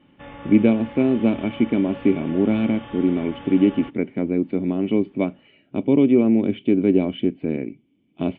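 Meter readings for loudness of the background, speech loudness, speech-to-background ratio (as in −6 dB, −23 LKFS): −39.0 LKFS, −20.5 LKFS, 18.5 dB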